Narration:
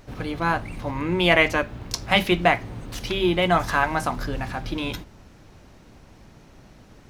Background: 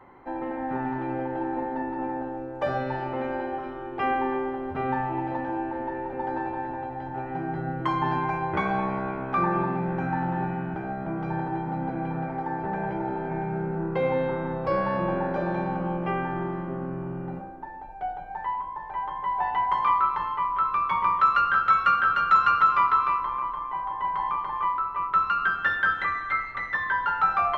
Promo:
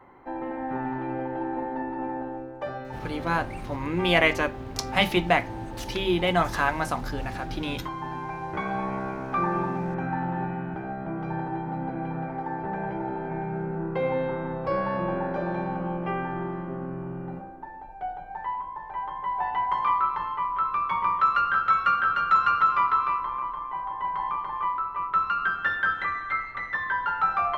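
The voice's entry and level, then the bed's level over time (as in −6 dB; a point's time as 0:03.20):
2.85 s, −3.0 dB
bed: 0:02.36 −1 dB
0:02.81 −8.5 dB
0:08.08 −8.5 dB
0:08.95 −1.5 dB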